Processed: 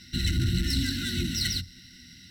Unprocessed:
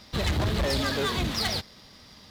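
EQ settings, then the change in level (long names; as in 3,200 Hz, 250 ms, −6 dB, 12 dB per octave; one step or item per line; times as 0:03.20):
linear-phase brick-wall band-stop 350–1,400 Hz
dynamic equaliser 1,900 Hz, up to −6 dB, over −45 dBFS, Q 1
EQ curve with evenly spaced ripples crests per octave 2, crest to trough 13 dB
0.0 dB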